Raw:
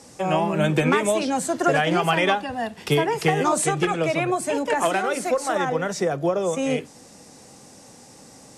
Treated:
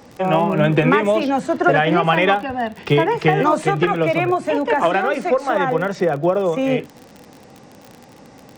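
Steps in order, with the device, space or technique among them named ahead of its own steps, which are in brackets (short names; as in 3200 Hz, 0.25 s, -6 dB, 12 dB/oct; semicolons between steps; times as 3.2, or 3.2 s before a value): lo-fi chain (LPF 3000 Hz 12 dB/oct; wow and flutter 22 cents; crackle 44/s -33 dBFS); 1.59–2.05 high shelf 9700 Hz -8 dB; gain +5 dB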